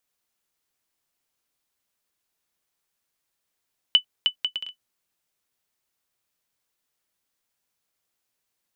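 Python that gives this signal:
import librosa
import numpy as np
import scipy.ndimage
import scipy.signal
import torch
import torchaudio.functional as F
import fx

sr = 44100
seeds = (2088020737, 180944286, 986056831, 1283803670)

y = fx.bouncing_ball(sr, first_gap_s=0.31, ratio=0.6, hz=2990.0, decay_ms=95.0, level_db=-6.0)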